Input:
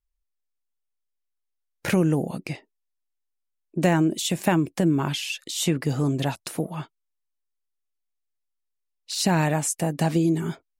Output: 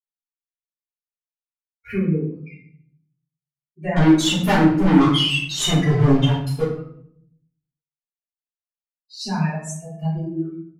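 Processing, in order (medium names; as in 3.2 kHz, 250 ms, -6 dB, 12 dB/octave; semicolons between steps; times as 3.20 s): expander on every frequency bin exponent 3; 3.96–6.64 s: waveshaping leveller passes 5; distance through air 54 m; simulated room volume 110 m³, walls mixed, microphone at 3.2 m; trim -8.5 dB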